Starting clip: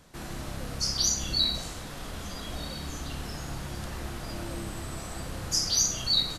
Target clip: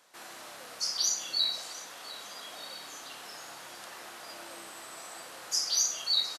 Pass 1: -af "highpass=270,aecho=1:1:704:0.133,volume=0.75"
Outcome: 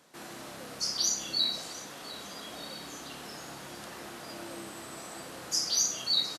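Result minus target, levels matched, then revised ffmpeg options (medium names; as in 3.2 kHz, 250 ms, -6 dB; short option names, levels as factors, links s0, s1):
250 Hz band +12.5 dB
-af "highpass=630,aecho=1:1:704:0.133,volume=0.75"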